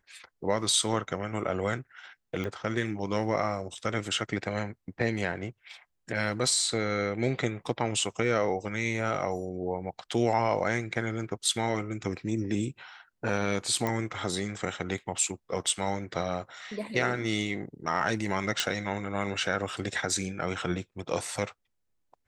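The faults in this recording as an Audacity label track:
2.440000	2.440000	pop -21 dBFS
13.870000	13.870000	pop -15 dBFS
18.600000	18.600000	pop

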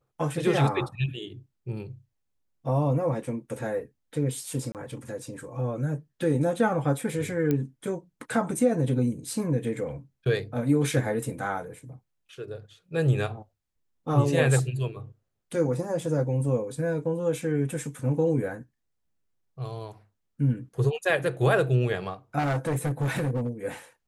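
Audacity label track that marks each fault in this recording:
4.720000	4.750000	dropout 28 ms
7.510000	7.510000	pop -14 dBFS
22.380000	23.490000	clipped -23 dBFS

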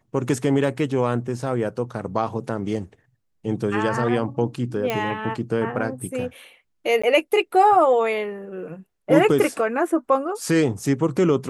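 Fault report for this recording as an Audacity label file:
4.900000	4.900000	pop -10 dBFS
7.020000	7.040000	dropout 15 ms

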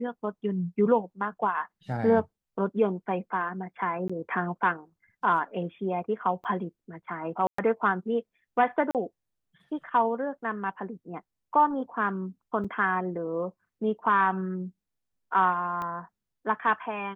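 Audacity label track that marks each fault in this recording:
4.080000	4.090000	dropout 15 ms
6.440000	6.450000	dropout 8.2 ms
7.470000	7.580000	dropout 114 ms
8.910000	8.950000	dropout 38 ms
12.640000	12.650000	dropout 5.6 ms
15.820000	15.820000	pop -22 dBFS

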